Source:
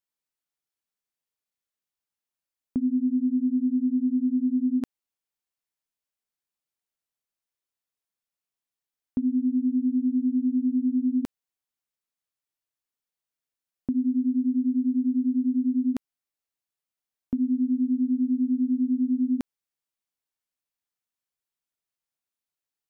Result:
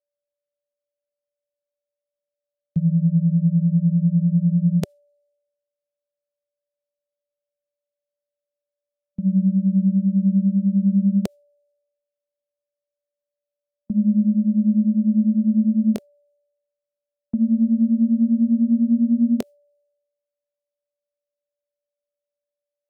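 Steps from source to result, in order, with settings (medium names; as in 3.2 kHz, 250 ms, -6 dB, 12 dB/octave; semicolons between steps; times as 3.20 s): pitch bend over the whole clip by -8.5 st ending unshifted; high-order bell 510 Hz +11.5 dB 1 oct; gate with hold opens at -21 dBFS; whistle 580 Hz -56 dBFS; three bands expanded up and down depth 100%; trim +6 dB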